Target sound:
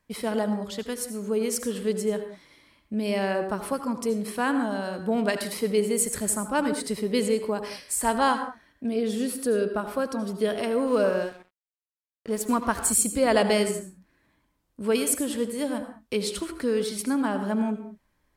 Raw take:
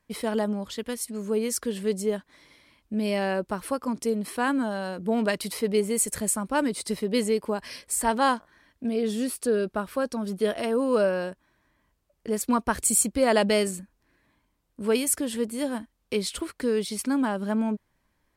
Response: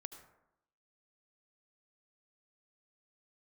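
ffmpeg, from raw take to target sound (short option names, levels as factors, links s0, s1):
-filter_complex "[1:a]atrim=start_sample=2205,afade=t=out:st=0.26:d=0.01,atrim=end_sample=11907[s0];[0:a][s0]afir=irnorm=-1:irlink=0,asettb=1/sr,asplit=3[s1][s2][s3];[s1]atrim=end=10.874[s4];[s2]atrim=start=10.87:end=12.91,asetpts=PTS-STARTPTS,afade=t=in:d=0.004:c=qsin,afade=t=out:st=2.036:d=0.004:c=qsin,aeval=exprs='sgn(val(0))*max(abs(val(0))-0.00299,0)':c=same[s5];[s3]atrim=start=12.906[s6];[s4][s5]acrossfade=d=0.004:c1=hsin:c2=qsin[s7];[s7][s6]acrossfade=d=0.004:c1=qsin:c2=hsin,volume=1.78"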